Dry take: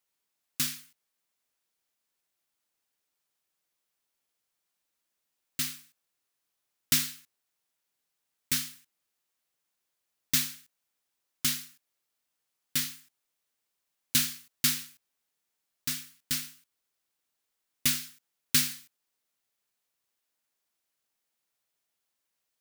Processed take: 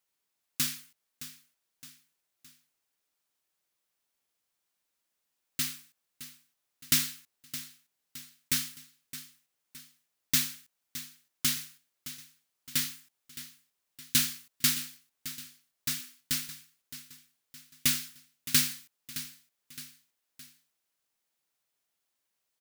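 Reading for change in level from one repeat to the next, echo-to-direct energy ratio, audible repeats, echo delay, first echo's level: −6.5 dB, −13.0 dB, 3, 616 ms, −14.0 dB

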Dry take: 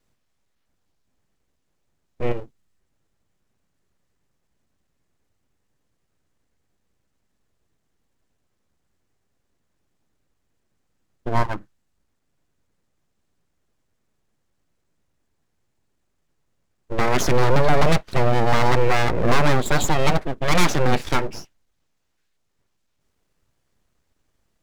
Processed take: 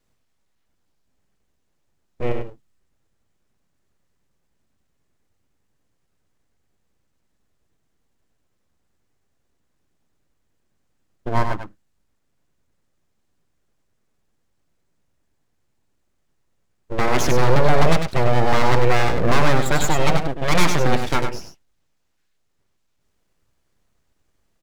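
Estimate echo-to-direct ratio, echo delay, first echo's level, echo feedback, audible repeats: −7.0 dB, 98 ms, −7.0 dB, repeats not evenly spaced, 1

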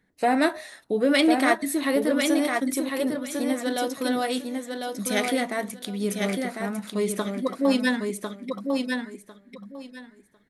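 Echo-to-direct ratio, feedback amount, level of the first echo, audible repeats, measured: −4.5 dB, 19%, −4.5 dB, 3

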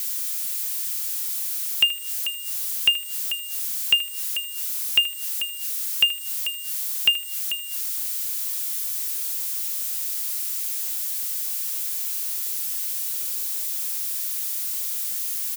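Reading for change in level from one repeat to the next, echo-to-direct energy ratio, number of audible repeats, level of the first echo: −10.0 dB, −14.5 dB, 2, −15.0 dB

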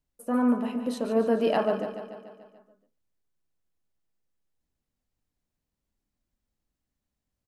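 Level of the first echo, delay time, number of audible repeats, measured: −10.0 dB, 145 ms, 6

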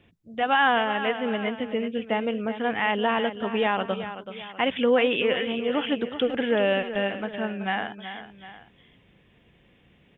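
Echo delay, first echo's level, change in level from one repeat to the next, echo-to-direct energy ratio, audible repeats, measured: 379 ms, −11.0 dB, −6.5 dB, −10.0 dB, 2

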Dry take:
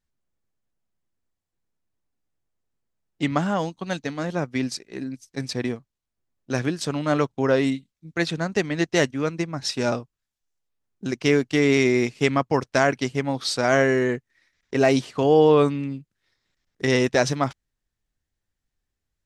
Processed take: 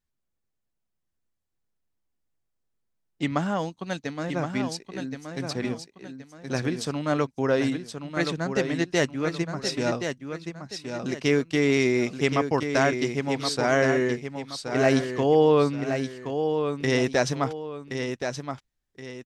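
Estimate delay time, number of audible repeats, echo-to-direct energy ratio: 1,073 ms, 2, −6.5 dB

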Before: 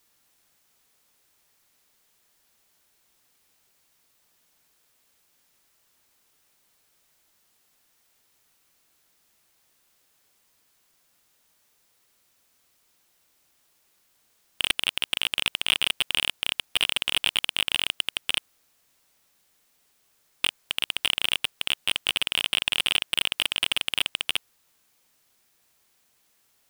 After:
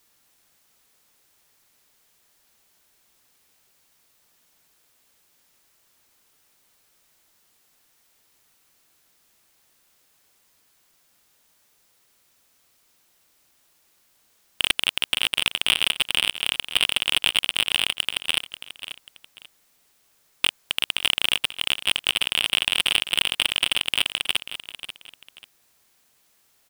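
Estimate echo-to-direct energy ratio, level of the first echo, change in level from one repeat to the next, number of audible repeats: −12.0 dB, −12.5 dB, −10.5 dB, 2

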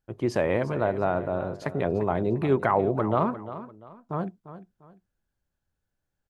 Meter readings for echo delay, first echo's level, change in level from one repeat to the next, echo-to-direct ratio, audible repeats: 348 ms, −13.5 dB, −10.0 dB, −13.0 dB, 2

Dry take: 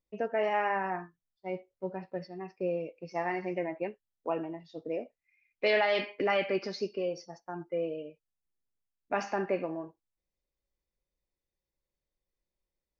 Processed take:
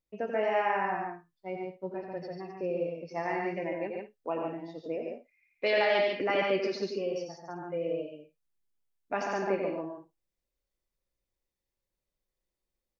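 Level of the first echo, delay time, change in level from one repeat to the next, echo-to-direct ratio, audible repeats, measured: −7.0 dB, 88 ms, repeats not evenly spaced, −1.0 dB, 3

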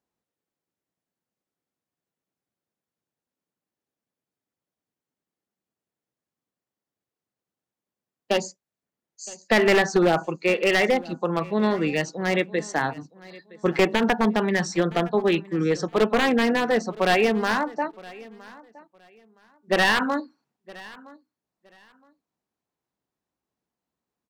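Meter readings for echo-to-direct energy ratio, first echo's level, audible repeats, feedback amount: −21.5 dB, −21.5 dB, 2, 22%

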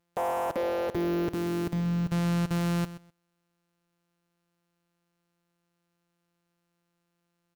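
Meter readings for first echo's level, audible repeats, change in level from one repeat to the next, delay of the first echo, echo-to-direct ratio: −14.5 dB, 2, −15.0 dB, 127 ms, −14.5 dB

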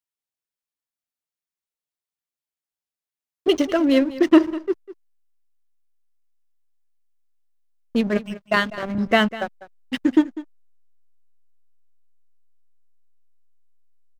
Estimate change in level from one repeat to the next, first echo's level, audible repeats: repeats not evenly spaced, −16.5 dB, 1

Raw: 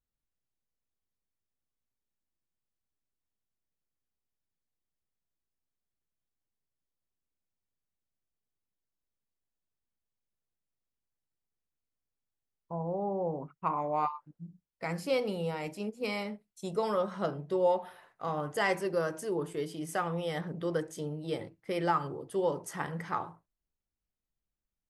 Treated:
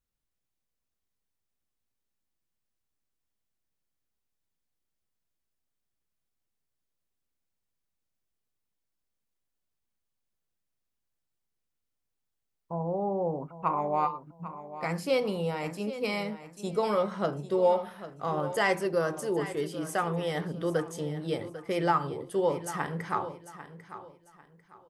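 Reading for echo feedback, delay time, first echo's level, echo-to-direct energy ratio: 28%, 796 ms, −13.5 dB, −13.0 dB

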